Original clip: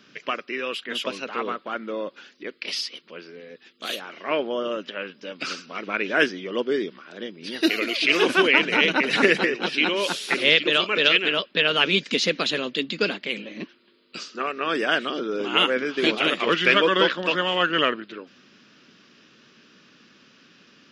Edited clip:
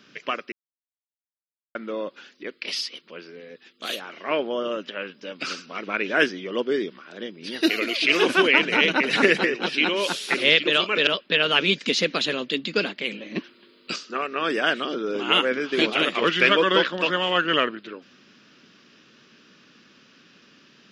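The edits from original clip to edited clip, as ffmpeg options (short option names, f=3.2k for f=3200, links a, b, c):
-filter_complex "[0:a]asplit=6[a][b][c][d][e][f];[a]atrim=end=0.52,asetpts=PTS-STARTPTS,afade=t=out:st=0.516:d=0.004:c=hsin[g];[b]atrim=start=0.52:end=1.75,asetpts=PTS-STARTPTS,volume=0[h];[c]atrim=start=1.75:end=11.072,asetpts=PTS-STARTPTS,afade=t=in:d=0.004:c=hsin[i];[d]atrim=start=11.318:end=13.612[j];[e]atrim=start=13.608:end=14.212,asetpts=PTS-STARTPTS,volume=6.5dB[k];[f]atrim=start=14.208[l];[g][h][i]concat=n=3:v=0:a=1[m];[m][j]acrossfade=d=0.004:c1=hsin:c2=hsin[n];[n][k]acrossfade=d=0.004:c1=hsin:c2=hsin[o];[o][l]acrossfade=d=0.004:c1=hsin:c2=hsin"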